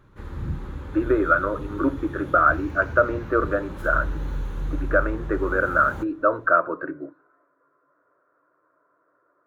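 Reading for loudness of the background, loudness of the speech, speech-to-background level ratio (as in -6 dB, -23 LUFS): -34.0 LUFS, -23.0 LUFS, 11.0 dB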